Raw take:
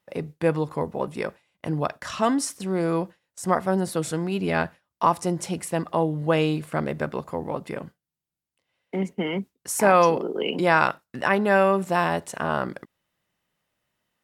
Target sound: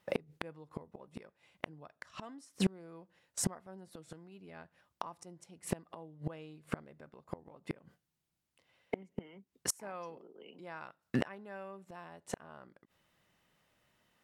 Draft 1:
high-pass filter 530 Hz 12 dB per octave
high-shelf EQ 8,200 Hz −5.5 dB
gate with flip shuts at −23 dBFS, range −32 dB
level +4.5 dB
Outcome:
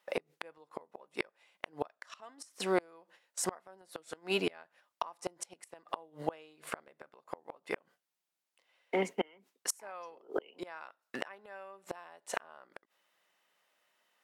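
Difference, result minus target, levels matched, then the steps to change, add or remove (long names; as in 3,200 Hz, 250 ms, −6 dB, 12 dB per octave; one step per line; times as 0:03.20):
500 Hz band +3.0 dB
remove: high-pass filter 530 Hz 12 dB per octave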